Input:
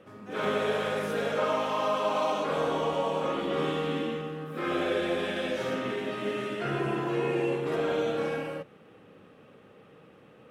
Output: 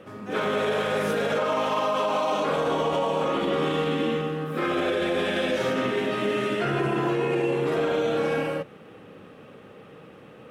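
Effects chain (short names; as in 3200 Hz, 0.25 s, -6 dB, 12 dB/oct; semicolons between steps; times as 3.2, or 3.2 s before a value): limiter -24 dBFS, peak gain reduction 7.5 dB; gain +7.5 dB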